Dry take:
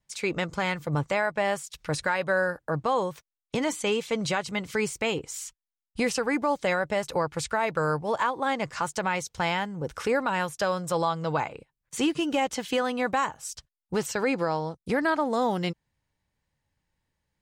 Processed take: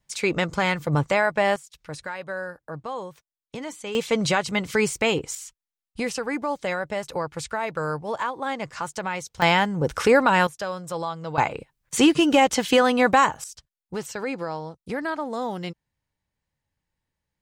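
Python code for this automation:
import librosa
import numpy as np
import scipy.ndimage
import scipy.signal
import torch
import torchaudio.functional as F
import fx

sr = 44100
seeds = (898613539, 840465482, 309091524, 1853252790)

y = fx.gain(x, sr, db=fx.steps((0.0, 5.0), (1.56, -7.0), (3.95, 5.5), (5.35, -1.5), (9.42, 8.5), (10.47, -3.5), (11.38, 8.5), (13.44, -3.5)))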